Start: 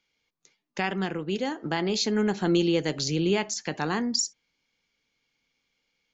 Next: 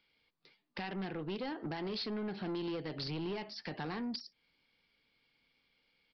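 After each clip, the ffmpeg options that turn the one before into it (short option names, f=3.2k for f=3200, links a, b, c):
-af "acompressor=threshold=-34dB:ratio=4,aresample=11025,asoftclip=type=tanh:threshold=-35.5dB,aresample=44100,volume=1.5dB"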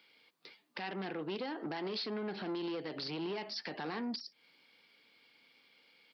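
-af "highpass=250,alimiter=level_in=16dB:limit=-24dB:level=0:latency=1:release=304,volume=-16dB,volume=9.5dB"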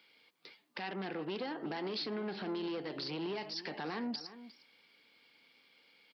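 -filter_complex "[0:a]asplit=2[a][b];[b]adelay=355.7,volume=-14dB,highshelf=f=4k:g=-8[c];[a][c]amix=inputs=2:normalize=0"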